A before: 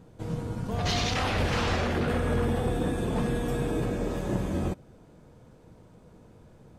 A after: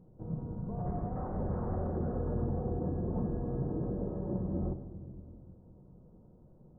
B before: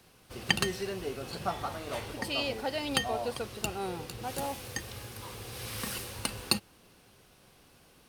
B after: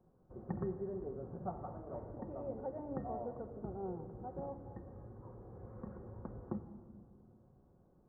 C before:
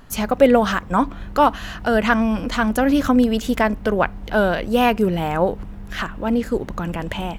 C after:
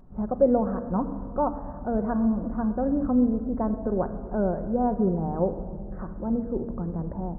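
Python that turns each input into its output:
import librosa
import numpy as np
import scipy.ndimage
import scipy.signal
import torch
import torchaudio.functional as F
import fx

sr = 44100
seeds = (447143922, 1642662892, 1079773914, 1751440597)

y = scipy.ndimage.gaussian_filter1d(x, 9.7, mode='constant')
y = fx.room_shoebox(y, sr, seeds[0], volume_m3=3800.0, walls='mixed', distance_m=0.99)
y = F.gain(torch.from_numpy(y), -6.0).numpy()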